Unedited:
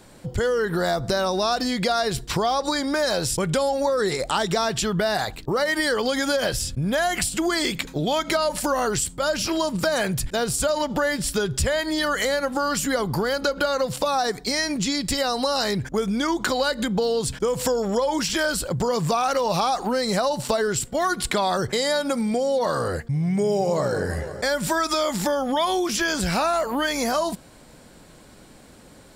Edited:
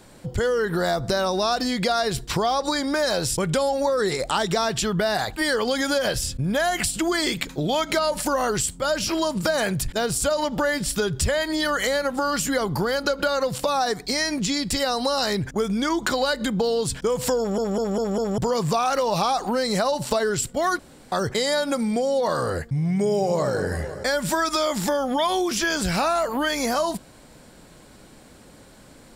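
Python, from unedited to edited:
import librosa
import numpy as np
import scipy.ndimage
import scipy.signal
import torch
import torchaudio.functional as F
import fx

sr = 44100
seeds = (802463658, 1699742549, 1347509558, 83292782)

y = fx.edit(x, sr, fx.cut(start_s=5.37, length_s=0.38),
    fx.stutter_over(start_s=17.76, slice_s=0.2, count=5),
    fx.room_tone_fill(start_s=21.17, length_s=0.33), tone=tone)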